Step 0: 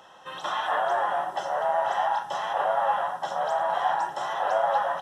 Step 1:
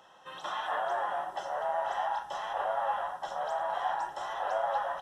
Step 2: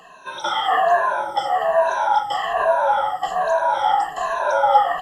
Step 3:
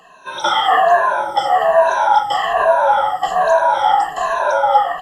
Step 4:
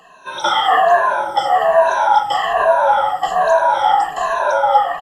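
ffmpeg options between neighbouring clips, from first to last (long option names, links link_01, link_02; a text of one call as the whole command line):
ffmpeg -i in.wav -af "asubboost=boost=9:cutoff=53,volume=-6.5dB" out.wav
ffmpeg -i in.wav -af "afftfilt=real='re*pow(10,23/40*sin(2*PI*(1.5*log(max(b,1)*sr/1024/100)/log(2)-(-1.2)*(pts-256)/sr)))':imag='im*pow(10,23/40*sin(2*PI*(1.5*log(max(b,1)*sr/1024/100)/log(2)-(-1.2)*(pts-256)/sr)))':win_size=1024:overlap=0.75,volume=8dB" out.wav
ffmpeg -i in.wav -af "dynaudnorm=framelen=220:gausssize=3:maxgain=11.5dB,volume=-1dB" out.wav
ffmpeg -i in.wav -filter_complex "[0:a]asplit=2[link_01][link_02];[link_02]adelay=190,highpass=300,lowpass=3400,asoftclip=type=hard:threshold=-11dB,volume=-23dB[link_03];[link_01][link_03]amix=inputs=2:normalize=0" out.wav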